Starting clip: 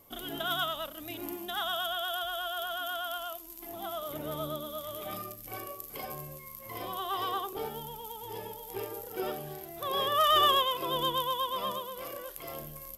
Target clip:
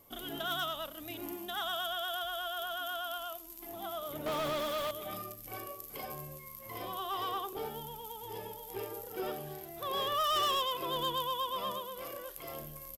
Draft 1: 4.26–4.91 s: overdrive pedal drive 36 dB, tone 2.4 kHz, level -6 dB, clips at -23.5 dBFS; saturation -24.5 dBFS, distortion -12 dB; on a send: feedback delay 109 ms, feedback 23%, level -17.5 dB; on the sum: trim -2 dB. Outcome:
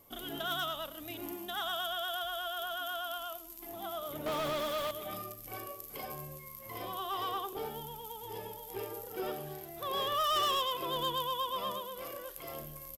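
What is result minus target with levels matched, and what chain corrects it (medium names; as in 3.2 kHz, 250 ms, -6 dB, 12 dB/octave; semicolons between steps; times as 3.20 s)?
echo-to-direct +8.5 dB
4.26–4.91 s: overdrive pedal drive 36 dB, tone 2.4 kHz, level -6 dB, clips at -23.5 dBFS; saturation -24.5 dBFS, distortion -12 dB; on a send: feedback delay 109 ms, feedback 23%, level -26 dB; on the sum: trim -2 dB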